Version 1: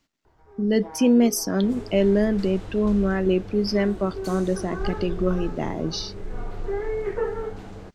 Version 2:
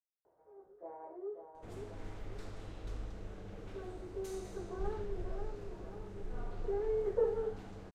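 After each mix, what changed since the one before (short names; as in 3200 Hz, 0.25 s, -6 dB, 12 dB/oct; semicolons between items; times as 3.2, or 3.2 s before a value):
speech: muted; first sound: add band-pass 550 Hz, Q 3.4; second sound -9.5 dB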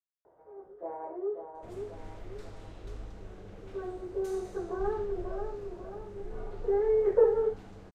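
first sound +9.0 dB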